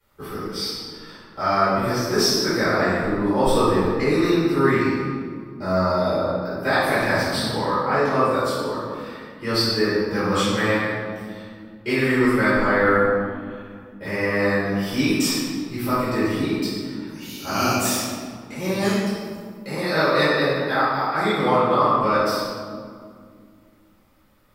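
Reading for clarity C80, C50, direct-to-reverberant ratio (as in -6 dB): 0.0 dB, -3.5 dB, -15.0 dB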